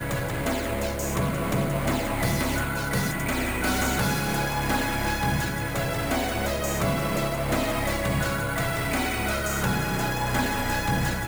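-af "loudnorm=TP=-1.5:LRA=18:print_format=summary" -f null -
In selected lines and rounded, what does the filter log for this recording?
Input Integrated:    -26.0 LUFS
Input True Peak:     -12.0 dBTP
Input LRA:             0.5 LU
Input Threshold:     -36.0 LUFS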